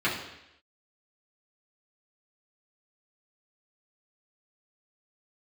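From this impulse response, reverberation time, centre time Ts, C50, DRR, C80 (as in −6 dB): 0.85 s, 41 ms, 5.0 dB, −8.5 dB, 8.0 dB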